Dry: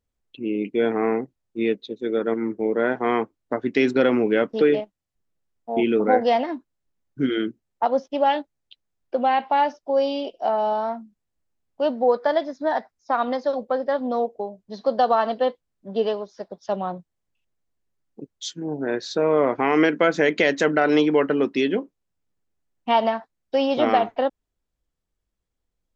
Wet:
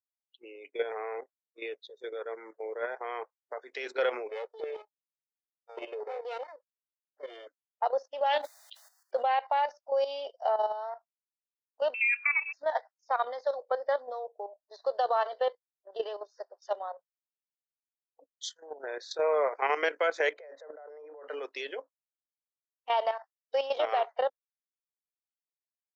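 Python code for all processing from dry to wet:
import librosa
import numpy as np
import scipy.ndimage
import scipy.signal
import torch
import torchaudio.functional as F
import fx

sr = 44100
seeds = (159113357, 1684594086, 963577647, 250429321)

y = fx.chain(x, sr, fx.lower_of_two(delay_ms=2.3),
    fx.bandpass_edges(low_hz=300.0, high_hz=3000.0),
    fx.peak_eq(hz=1400.0, db=-13.0, octaves=1.7), at=(4.29, 7.47))
y = fx.chain(y, sr, fx.high_shelf(hz=2300.0, db=5.5),
    fx.sustainer(db_per_s=47.0), at=(8.26, 9.23))
y = fx.chain(y, sr, fx.freq_invert(carrier_hz=2900),
    fx.band_squash(depth_pct=70), at=(11.94, 12.53))
y = fx.chain(y, sr, fx.bandpass_q(hz=560.0, q=1.6),
    fx.over_compress(threshold_db=-31.0, ratio=-1.0), at=(20.33, 21.28))
y = scipy.signal.sosfilt(scipy.signal.butter(6, 460.0, 'highpass', fs=sr, output='sos'), y)
y = fx.noise_reduce_blind(y, sr, reduce_db=27)
y = fx.level_steps(y, sr, step_db=11)
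y = y * librosa.db_to_amplitude(-3.5)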